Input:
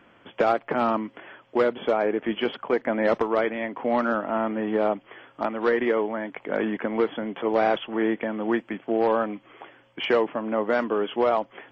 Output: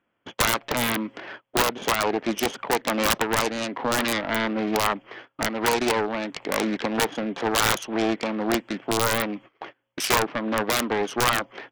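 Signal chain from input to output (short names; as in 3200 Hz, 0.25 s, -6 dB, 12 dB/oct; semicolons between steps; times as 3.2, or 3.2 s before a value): self-modulated delay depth 0.63 ms; gate -45 dBFS, range -27 dB; in parallel at +2.5 dB: compressor 12:1, threshold -38 dBFS, peak gain reduction 20.5 dB; on the sum: wrapped overs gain 12 dB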